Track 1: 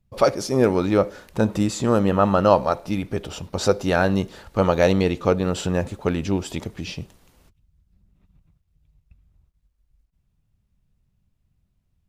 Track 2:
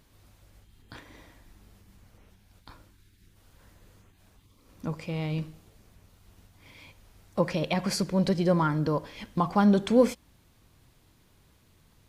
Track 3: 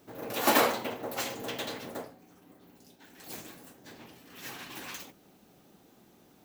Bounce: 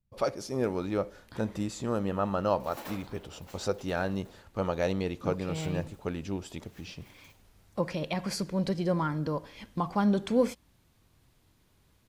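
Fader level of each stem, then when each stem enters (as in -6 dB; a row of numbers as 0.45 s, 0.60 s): -11.5 dB, -4.5 dB, -19.5 dB; 0.00 s, 0.40 s, 2.30 s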